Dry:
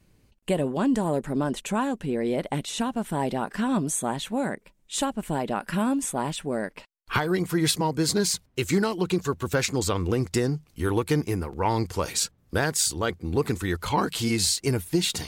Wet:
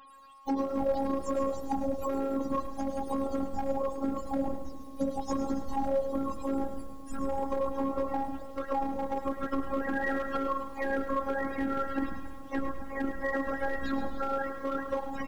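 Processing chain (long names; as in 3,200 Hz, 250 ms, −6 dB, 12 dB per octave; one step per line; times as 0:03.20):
frequency axis turned over on the octave scale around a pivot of 400 Hz
parametric band 2,200 Hz −6.5 dB 0.2 octaves
mains-hum notches 60/120/180/240 Hz
reversed playback
upward compression, threshold −48 dBFS
reversed playback
brickwall limiter −20.5 dBFS, peak gain reduction 8.5 dB
downward compressor 3 to 1, threshold −32 dBFS, peak gain reduction 6.5 dB
steady tone 1,100 Hz −58 dBFS
on a send: echo with shifted repeats 137 ms, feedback 65%, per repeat −130 Hz, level −10.5 dB
on the sum: hard clipping −27.5 dBFS, distortion −21 dB
phases set to zero 273 Hz
feedback echo at a low word length 105 ms, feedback 55%, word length 10 bits, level −11 dB
level +6.5 dB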